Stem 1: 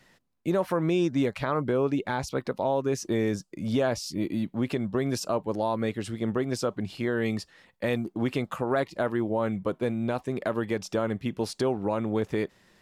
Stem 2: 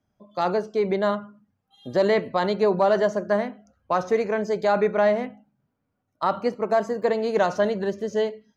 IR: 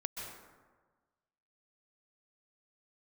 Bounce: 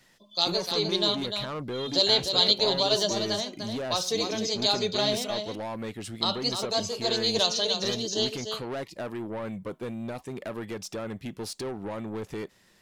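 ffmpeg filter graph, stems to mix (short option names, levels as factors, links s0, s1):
-filter_complex "[0:a]highshelf=f=3500:g=8,acontrast=87,asoftclip=type=tanh:threshold=0.112,volume=0.299[s0];[1:a]equalizer=f=5000:w=0.45:g=10.5,flanger=delay=1.8:depth=5.7:regen=-56:speed=0.73:shape=sinusoidal,highshelf=f=2600:t=q:w=3:g=11,volume=0.562,asplit=2[s1][s2];[s2]volume=0.447,aecho=0:1:299:1[s3];[s0][s1][s3]amix=inputs=3:normalize=0"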